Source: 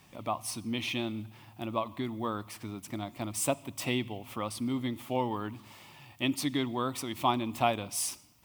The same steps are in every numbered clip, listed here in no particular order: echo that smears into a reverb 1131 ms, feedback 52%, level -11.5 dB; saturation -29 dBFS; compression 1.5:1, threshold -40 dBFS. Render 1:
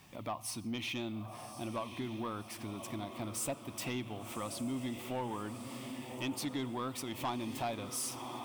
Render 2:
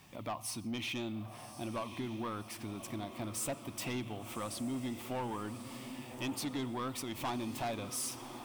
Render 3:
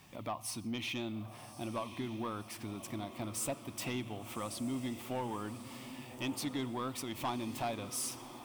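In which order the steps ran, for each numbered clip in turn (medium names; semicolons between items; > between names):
echo that smears into a reverb > compression > saturation; saturation > echo that smears into a reverb > compression; compression > saturation > echo that smears into a reverb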